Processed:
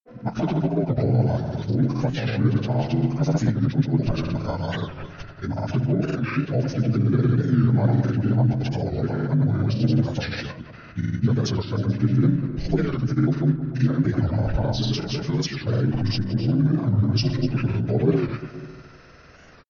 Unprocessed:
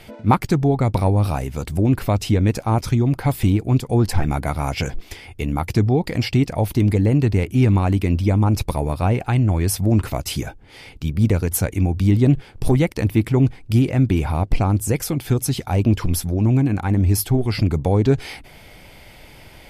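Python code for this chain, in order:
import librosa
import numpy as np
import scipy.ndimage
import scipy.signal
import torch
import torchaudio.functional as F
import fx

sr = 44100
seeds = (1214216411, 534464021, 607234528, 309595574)

y = fx.partial_stretch(x, sr, pct=79)
y = fx.echo_filtered(y, sr, ms=152, feedback_pct=52, hz=2800.0, wet_db=-7)
y = fx.granulator(y, sr, seeds[0], grain_ms=100.0, per_s=20.0, spray_ms=100.0, spread_st=0)
y = fx.record_warp(y, sr, rpm=45.0, depth_cents=160.0)
y = y * 10.0 ** (-2.0 / 20.0)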